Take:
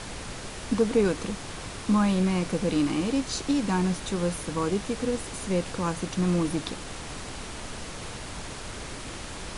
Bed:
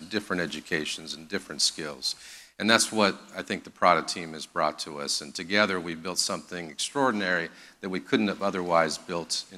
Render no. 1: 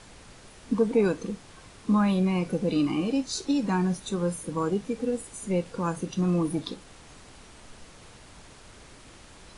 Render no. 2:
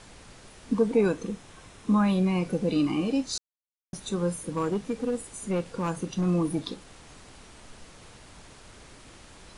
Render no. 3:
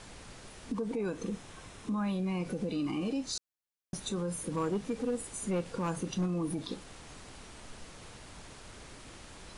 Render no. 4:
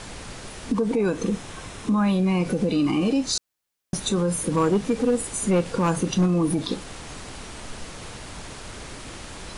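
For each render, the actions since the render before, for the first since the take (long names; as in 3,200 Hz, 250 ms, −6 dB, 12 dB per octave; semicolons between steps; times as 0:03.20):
noise reduction from a noise print 12 dB
0:01.01–0:02.05: notch filter 4,600 Hz, Q 9.9; 0:03.38–0:03.93: silence; 0:04.54–0:06.26: hard clipping −22 dBFS
downward compressor, threshold −26 dBFS, peak gain reduction 9 dB; brickwall limiter −26 dBFS, peak gain reduction 7.5 dB
level +11.5 dB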